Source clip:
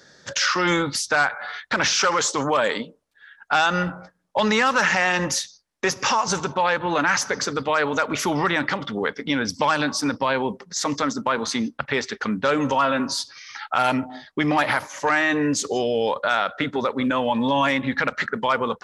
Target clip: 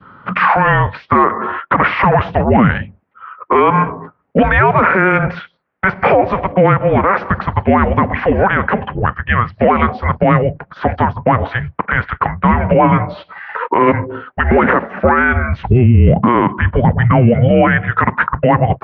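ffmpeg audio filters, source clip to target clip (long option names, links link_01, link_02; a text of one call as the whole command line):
ffmpeg -i in.wav -filter_complex "[0:a]highpass=frequency=340:width_type=q:width=0.5412,highpass=frequency=340:width_type=q:width=1.307,lowpass=frequency=2500:width_type=q:width=0.5176,lowpass=frequency=2500:width_type=q:width=0.7071,lowpass=frequency=2500:width_type=q:width=1.932,afreqshift=-370,adynamicequalizer=threshold=0.0178:dfrequency=1100:dqfactor=0.87:tfrequency=1100:tqfactor=0.87:attack=5:release=100:ratio=0.375:range=2.5:mode=cutabove:tftype=bell,highpass=83,asettb=1/sr,asplit=3[link_01][link_02][link_03];[link_01]atrim=end=15.664[link_04];[link_02]atrim=start=15.66:end=17.48,asetpts=PTS-STARTPTS,afade=type=in:duration=0.004:curve=qsin,afade=type=out:start_time=1.816:duration=0.004:curve=qsin,lowshelf=frequency=180:gain=9[link_05];[link_03]atrim=start=17.476[link_06];[link_04][link_05]acrossfade=duration=0.004:curve1=hsin:curve2=qsin[link_07];[link_07][link_06]acrossfade=duration=0.004:curve1=qsin:curve2=hsin,alimiter=level_in=16dB:limit=-1dB:release=50:level=0:latency=1,volume=-1dB" out.wav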